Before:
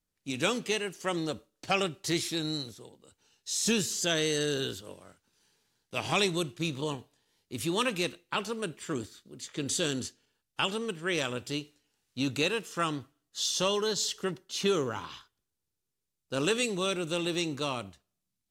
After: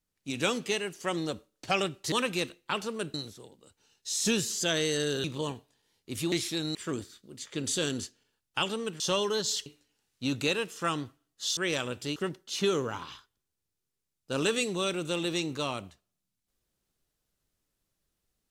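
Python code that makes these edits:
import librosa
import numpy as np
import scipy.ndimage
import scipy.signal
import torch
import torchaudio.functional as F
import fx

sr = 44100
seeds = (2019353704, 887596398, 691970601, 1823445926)

y = fx.edit(x, sr, fx.swap(start_s=2.12, length_s=0.43, other_s=7.75, other_length_s=1.02),
    fx.cut(start_s=4.65, length_s=2.02),
    fx.swap(start_s=11.02, length_s=0.59, other_s=13.52, other_length_s=0.66), tone=tone)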